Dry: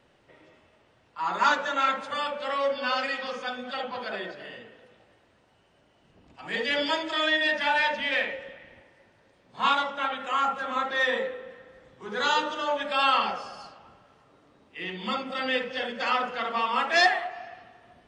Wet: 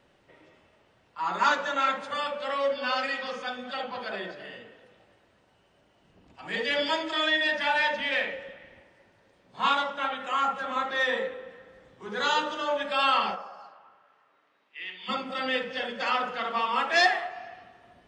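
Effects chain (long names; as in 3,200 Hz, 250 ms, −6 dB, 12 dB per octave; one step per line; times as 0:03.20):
0:13.34–0:15.08: resonant band-pass 780 Hz → 3,000 Hz, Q 1
convolution reverb RT60 0.80 s, pre-delay 5 ms, DRR 13.5 dB
level −1 dB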